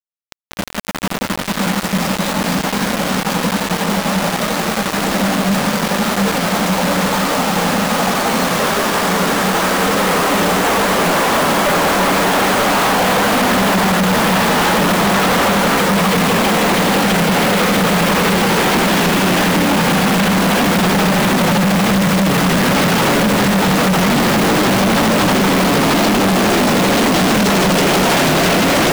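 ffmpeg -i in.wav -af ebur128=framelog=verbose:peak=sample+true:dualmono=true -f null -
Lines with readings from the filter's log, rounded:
Integrated loudness:
  I:         -10.8 LUFS
  Threshold: -20.9 LUFS
Loudness range:
  LRA:         4.1 LU
  Threshold: -30.8 LUFS
  LRA low:   -13.8 LUFS
  LRA high:   -9.7 LUFS
Sample peak:
  Peak:      -12.1 dBFS
True peak:
  Peak:       -8.9 dBFS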